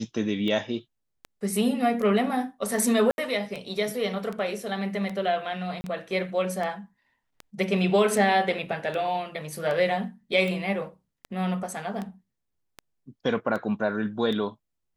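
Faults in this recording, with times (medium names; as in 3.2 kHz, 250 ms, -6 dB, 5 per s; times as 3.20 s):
tick 78 rpm -21 dBFS
3.11–3.18 s: dropout 71 ms
5.81–5.84 s: dropout 30 ms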